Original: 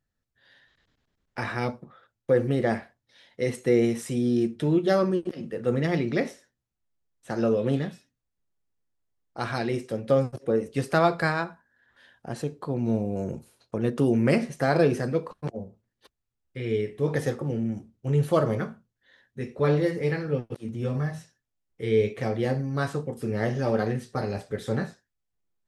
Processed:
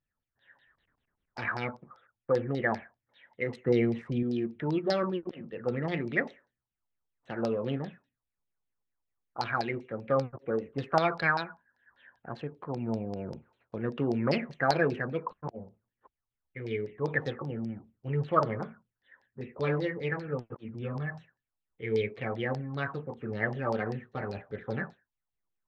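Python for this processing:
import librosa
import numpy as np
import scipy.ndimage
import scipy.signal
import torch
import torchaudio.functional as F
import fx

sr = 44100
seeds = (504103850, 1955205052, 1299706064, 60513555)

y = fx.wiener(x, sr, points=9)
y = fx.filter_lfo_lowpass(y, sr, shape='saw_down', hz=5.1, low_hz=810.0, high_hz=5100.0, q=7.0)
y = fx.low_shelf(y, sr, hz=230.0, db=8.5, at=(3.66, 4.23))
y = F.gain(torch.from_numpy(y), -7.5).numpy()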